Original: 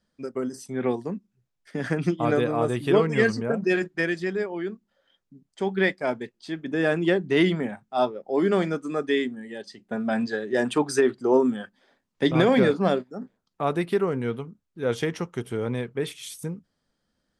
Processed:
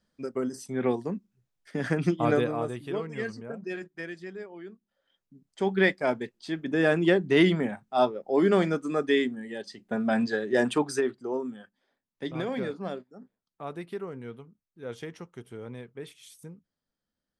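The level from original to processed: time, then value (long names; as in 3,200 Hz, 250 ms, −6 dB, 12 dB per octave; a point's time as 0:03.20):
0:02.35 −1 dB
0:02.90 −12.5 dB
0:04.67 −12.5 dB
0:05.67 0 dB
0:10.63 0 dB
0:11.40 −12.5 dB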